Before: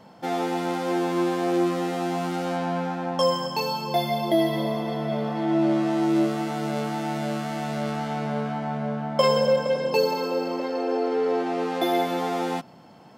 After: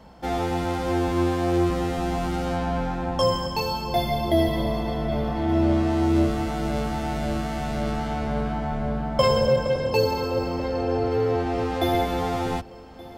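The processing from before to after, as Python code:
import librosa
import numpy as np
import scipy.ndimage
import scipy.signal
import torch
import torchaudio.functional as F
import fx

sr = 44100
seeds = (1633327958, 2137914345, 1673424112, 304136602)

y = fx.octave_divider(x, sr, octaves=2, level_db=0.0)
y = fx.echo_feedback(y, sr, ms=1174, feedback_pct=51, wet_db=-21.5)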